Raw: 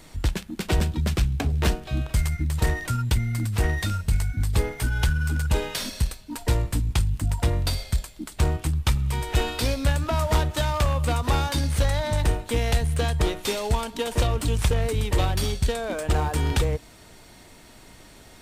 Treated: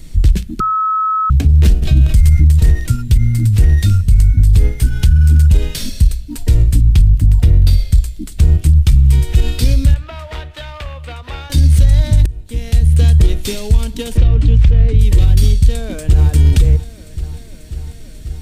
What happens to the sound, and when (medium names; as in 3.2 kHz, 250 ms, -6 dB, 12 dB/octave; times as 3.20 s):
0.60–1.30 s: bleep 1.29 kHz -8 dBFS
1.82–2.52 s: level flattener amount 50%
6.81–7.92 s: peaking EQ 8.1 kHz -6 dB 1.1 oct
9.94–11.50 s: three-band isolator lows -23 dB, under 530 Hz, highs -21 dB, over 3.4 kHz
12.26–13.10 s: fade in
14.17–14.99 s: low-pass 3 kHz
15.71–16.30 s: echo throw 540 ms, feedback 80%, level -15 dB
whole clip: amplifier tone stack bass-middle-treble 10-0-1; hum notches 60/120 Hz; loudness maximiser +27.5 dB; trim -1 dB